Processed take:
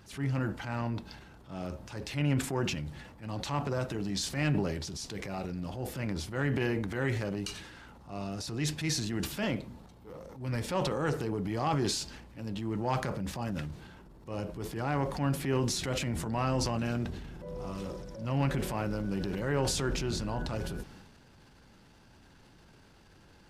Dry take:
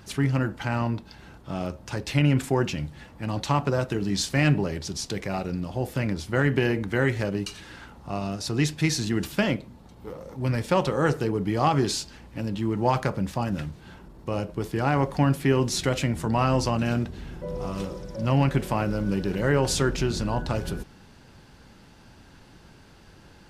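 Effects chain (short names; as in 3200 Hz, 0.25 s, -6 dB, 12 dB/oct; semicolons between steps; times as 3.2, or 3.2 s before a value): transient shaper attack -7 dB, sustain +7 dB; gain -7 dB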